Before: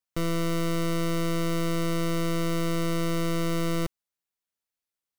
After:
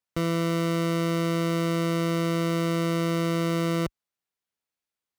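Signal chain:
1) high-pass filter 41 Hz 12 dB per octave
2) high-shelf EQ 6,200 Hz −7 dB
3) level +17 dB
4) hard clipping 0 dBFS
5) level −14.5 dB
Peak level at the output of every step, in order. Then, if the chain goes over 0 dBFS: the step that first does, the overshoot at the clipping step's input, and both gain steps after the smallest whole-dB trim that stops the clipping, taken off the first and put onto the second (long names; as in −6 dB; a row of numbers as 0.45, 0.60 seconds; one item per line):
−19.5, −20.0, −3.0, −3.0, −17.5 dBFS
no step passes full scale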